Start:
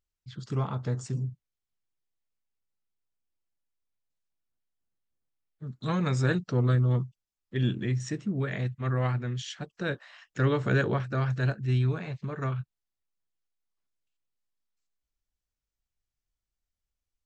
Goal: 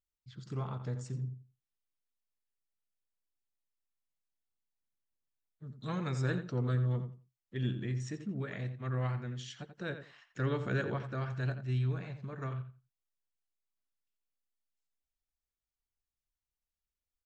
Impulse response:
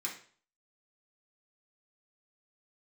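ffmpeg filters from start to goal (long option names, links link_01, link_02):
-filter_complex "[0:a]asplit=2[link_01][link_02];[link_02]adelay=86,lowpass=frequency=3200:poles=1,volume=-9.5dB,asplit=2[link_03][link_04];[link_04]adelay=86,lowpass=frequency=3200:poles=1,volume=0.2,asplit=2[link_05][link_06];[link_06]adelay=86,lowpass=frequency=3200:poles=1,volume=0.2[link_07];[link_01][link_03][link_05][link_07]amix=inputs=4:normalize=0,volume=-8dB"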